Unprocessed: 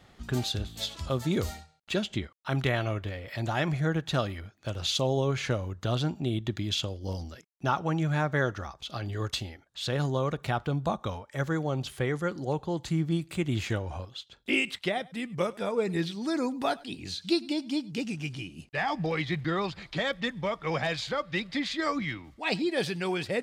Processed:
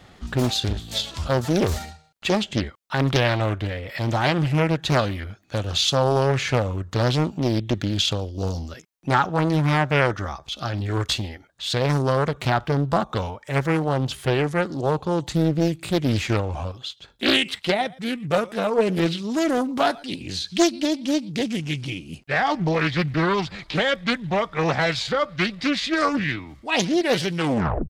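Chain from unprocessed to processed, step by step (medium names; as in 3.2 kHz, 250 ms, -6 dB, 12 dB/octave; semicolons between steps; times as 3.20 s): tape stop on the ending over 0.44 s; tempo 0.84×; loudspeaker Doppler distortion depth 0.65 ms; trim +8 dB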